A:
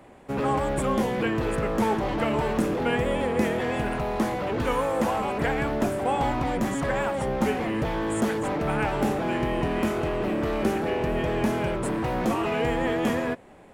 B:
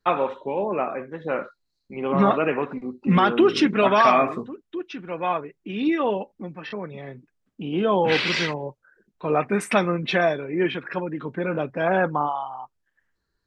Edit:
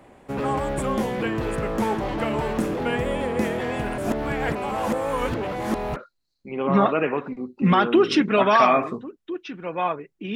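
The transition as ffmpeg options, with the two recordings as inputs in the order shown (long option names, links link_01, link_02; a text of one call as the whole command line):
ffmpeg -i cue0.wav -i cue1.wav -filter_complex "[0:a]apad=whole_dur=10.35,atrim=end=10.35,asplit=2[link_01][link_02];[link_01]atrim=end=3.982[link_03];[link_02]atrim=start=3.978:end=5.962,asetpts=PTS-STARTPTS,areverse[link_04];[1:a]atrim=start=1.408:end=5.8[link_05];[link_03][link_04]acrossfade=duration=0.004:curve1=hsin:curve2=hsin[link_06];[link_06][link_05]acrossfade=duration=0.004:curve1=hsin:curve2=hsin" out.wav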